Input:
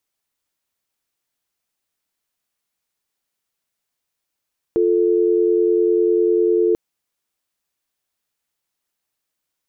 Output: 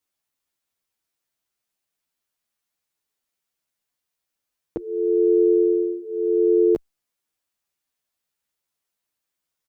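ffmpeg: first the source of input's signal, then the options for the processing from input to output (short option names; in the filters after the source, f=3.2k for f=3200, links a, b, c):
-f lavfi -i "aevalsrc='0.158*(sin(2*PI*350*t)+sin(2*PI*440*t))':d=1.99:s=44100"
-filter_complex "[0:a]asplit=2[a][b];[b]adelay=10.3,afreqshift=-0.82[c];[a][c]amix=inputs=2:normalize=1"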